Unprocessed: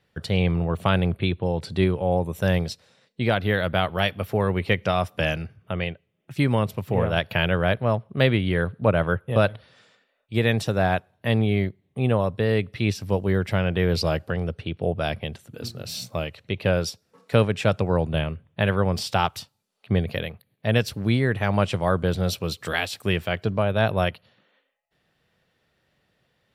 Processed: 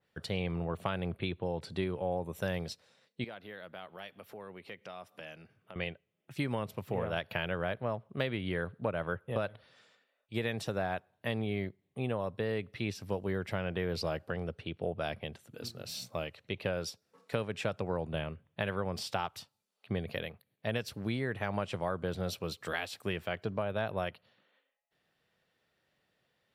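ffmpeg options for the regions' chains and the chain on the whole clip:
-filter_complex "[0:a]asettb=1/sr,asplit=3[s0][s1][s2];[s0]atrim=end=3.244[s3];[s1]atrim=start=3.24:end=5.76,asetpts=PTS-STARTPTS,afade=t=in:d=0.004:c=qsin,afade=t=out:st=2.516:d=0.004:c=qsin,highpass=160,acompressor=threshold=0.00447:ratio=2:attack=3.2:release=140:knee=1:detection=peak[s4];[s2]atrim=start=5.756[s5];[s3][s4]acrossfade=d=0.004:c1=hsin:c2=qsin[s6];[s6][s5]acrossfade=d=0.004:c1=qsin:c2=hsin,lowshelf=f=160:g=-8.5,acompressor=threshold=0.0794:ratio=6,adynamicequalizer=threshold=0.00708:dfrequency=2300:dqfactor=0.7:tfrequency=2300:tqfactor=0.7:attack=5:release=100:ratio=0.375:range=2:mode=cutabove:tftype=highshelf,volume=0.473"

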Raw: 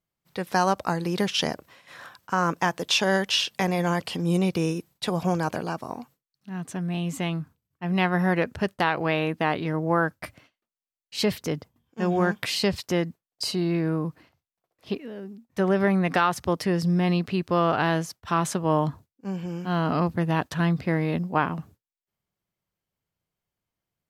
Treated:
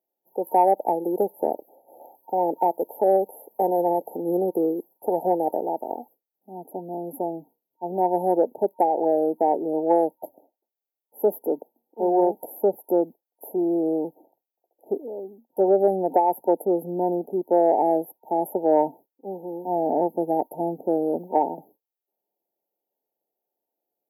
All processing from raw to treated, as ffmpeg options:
-filter_complex "[0:a]asettb=1/sr,asplit=3[s0][s1][s2];[s0]atrim=end=11.214[s3];[s1]atrim=start=11.21:end=12.35,asetpts=PTS-STARTPTS,afade=t=in:d=0.004:c=qsin,afade=t=out:st=1.136:d=0.004:c=qsin,highpass=f=180:w=0.5412,highpass=f=180:w=1.3066,asoftclip=type=hard:threshold=0.211[s4];[s2]atrim=start=12.346[s5];[s3][s4]acrossfade=d=0.004:c1=hsin:c2=qsin[s6];[s6][s5]acrossfade=d=0.004:c1=qsin:c2=hsin,highpass=f=330:w=0.5412,highpass=f=330:w=1.3066,afftfilt=real='re*(1-between(b*sr/4096,920,11000))':imag='im*(1-between(b*sr/4096,920,11000))':win_size=4096:overlap=0.75,acontrast=80"

